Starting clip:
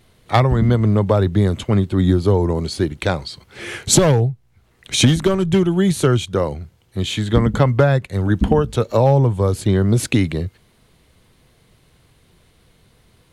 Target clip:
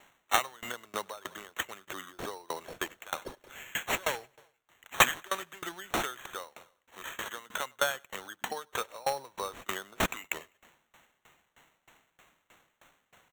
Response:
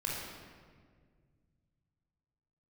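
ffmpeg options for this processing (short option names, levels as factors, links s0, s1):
-filter_complex "[0:a]highpass=1300,asplit=2[s0][s1];[s1]acompressor=threshold=0.0178:ratio=6,volume=0.841[s2];[s0][s2]amix=inputs=2:normalize=0,acrusher=samples=9:mix=1:aa=0.000001,aecho=1:1:101|202|303|404:0.0891|0.0508|0.029|0.0165,aeval=exprs='val(0)*pow(10,-26*if(lt(mod(3.2*n/s,1),2*abs(3.2)/1000),1-mod(3.2*n/s,1)/(2*abs(3.2)/1000),(mod(3.2*n/s,1)-2*abs(3.2)/1000)/(1-2*abs(3.2)/1000))/20)':c=same"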